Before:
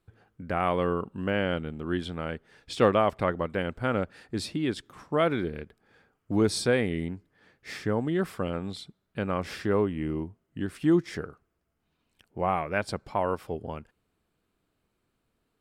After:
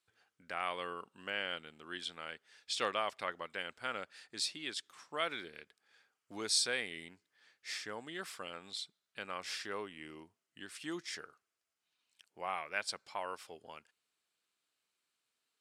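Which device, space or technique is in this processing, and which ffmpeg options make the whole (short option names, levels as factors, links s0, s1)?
piezo pickup straight into a mixer: -af "lowpass=6600,aderivative,volume=2.11"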